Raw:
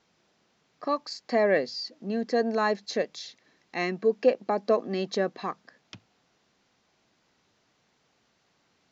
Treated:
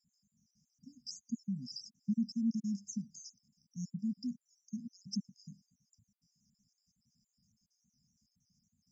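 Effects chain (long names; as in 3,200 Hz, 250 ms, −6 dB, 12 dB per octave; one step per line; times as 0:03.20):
time-frequency cells dropped at random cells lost 48%
linear-phase brick-wall band-stop 250–4,800 Hz
level +1.5 dB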